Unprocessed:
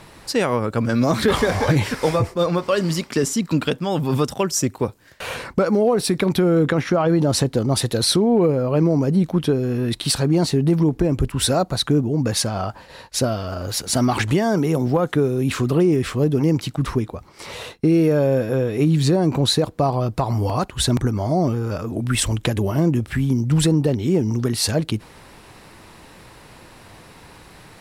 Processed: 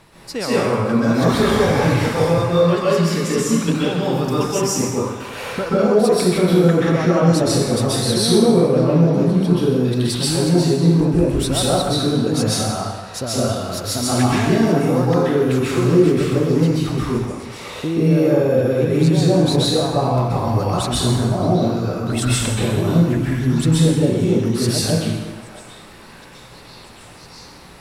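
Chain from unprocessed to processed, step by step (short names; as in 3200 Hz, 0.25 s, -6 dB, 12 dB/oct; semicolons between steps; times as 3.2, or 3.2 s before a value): on a send: delay with a stepping band-pass 0.649 s, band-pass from 1100 Hz, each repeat 0.7 oct, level -9 dB; on the sum: plate-style reverb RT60 1.2 s, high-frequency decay 0.85×, pre-delay 0.115 s, DRR -8 dB; gain -6.5 dB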